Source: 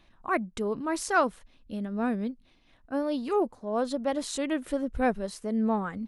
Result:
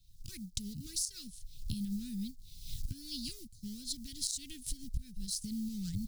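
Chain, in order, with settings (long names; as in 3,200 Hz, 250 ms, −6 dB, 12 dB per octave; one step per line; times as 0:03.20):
mu-law and A-law mismatch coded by A
camcorder AGC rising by 50 dB per second
Chebyshev band-stop filter 130–4,600 Hz, order 3
downward compressor 8 to 1, threshold −39 dBFS, peak gain reduction 16 dB
level +7 dB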